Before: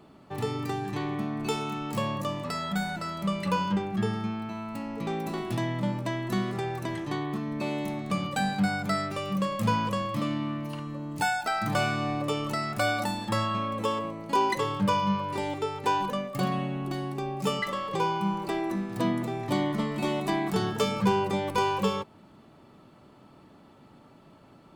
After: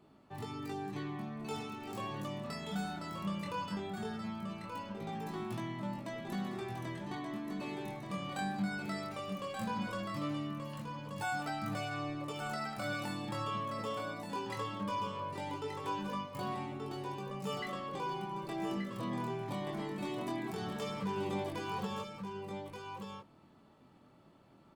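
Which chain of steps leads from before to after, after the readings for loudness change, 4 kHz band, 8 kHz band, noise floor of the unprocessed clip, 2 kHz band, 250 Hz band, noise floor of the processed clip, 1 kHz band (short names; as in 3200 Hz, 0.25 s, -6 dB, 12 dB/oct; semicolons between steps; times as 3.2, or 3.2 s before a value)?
-10.0 dB, -10.0 dB, -10.5 dB, -55 dBFS, -9.5 dB, -9.5 dB, -62 dBFS, -10.0 dB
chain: limiter -20 dBFS, peak gain reduction 7 dB; chorus 0.18 Hz, delay 19 ms, depth 6.5 ms; on a send: echo 1.179 s -6 dB; on the sum: gain -6.5 dB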